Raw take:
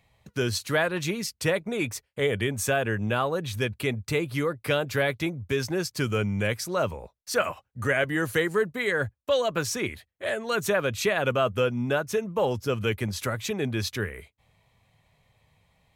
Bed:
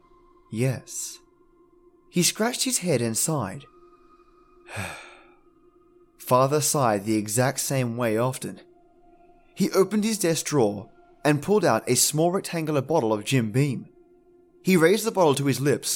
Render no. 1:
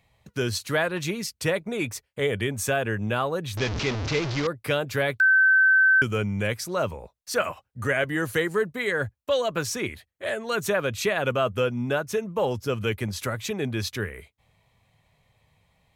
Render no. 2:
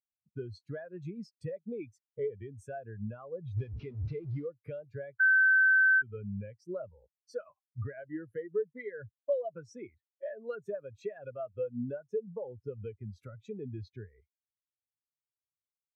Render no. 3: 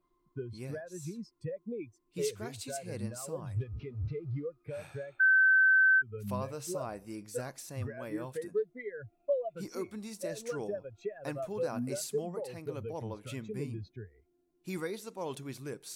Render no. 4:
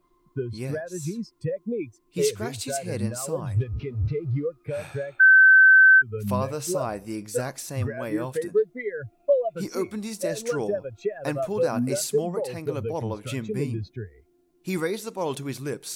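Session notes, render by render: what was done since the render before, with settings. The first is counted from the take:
3.57–4.47 s: one-bit delta coder 32 kbps, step -22.5 dBFS; 5.20–6.02 s: bleep 1.54 kHz -14.5 dBFS
compression 6:1, threshold -32 dBFS, peak gain reduction 14 dB; spectral contrast expander 2.5:1
add bed -19 dB
trim +10 dB

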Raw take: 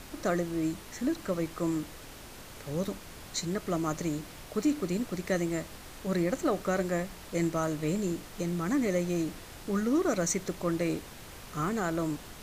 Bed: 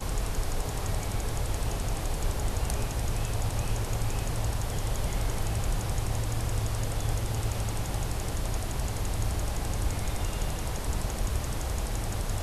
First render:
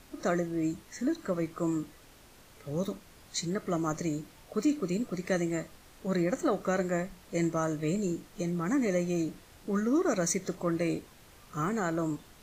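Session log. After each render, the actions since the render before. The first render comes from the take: noise print and reduce 9 dB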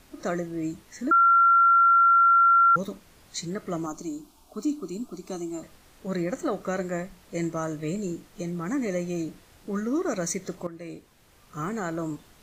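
1.11–2.76 s: bleep 1.37 kHz -14.5 dBFS; 3.86–5.63 s: static phaser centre 510 Hz, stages 6; 10.67–11.69 s: fade in, from -14 dB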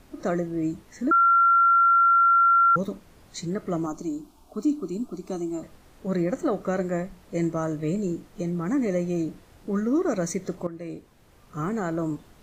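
tilt shelf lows +4 dB, about 1.3 kHz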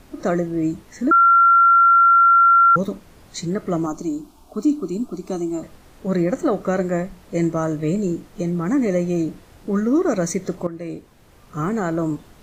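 trim +5.5 dB

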